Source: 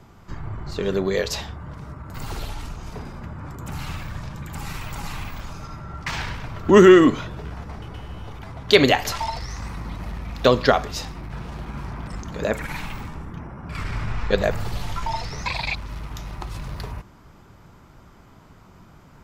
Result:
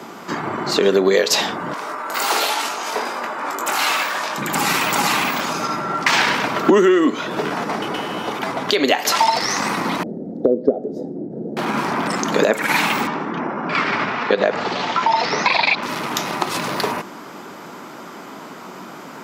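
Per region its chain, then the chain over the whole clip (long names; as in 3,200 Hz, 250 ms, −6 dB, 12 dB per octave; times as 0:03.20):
0:01.73–0:04.38: high-pass filter 540 Hz + double-tracking delay 21 ms −6 dB
0:10.03–0:11.57: inverse Chebyshev low-pass filter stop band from 1,000 Hz + low-shelf EQ 110 Hz −8.5 dB
0:13.07–0:15.83: Bessel low-pass filter 3,800 Hz, order 8 + parametric band 60 Hz −5.5 dB 2.3 octaves + downward compressor 3 to 1, threshold −28 dBFS
whole clip: high-pass filter 230 Hz 24 dB per octave; downward compressor 16 to 1, threshold −29 dBFS; boost into a limiter +19 dB; level −1 dB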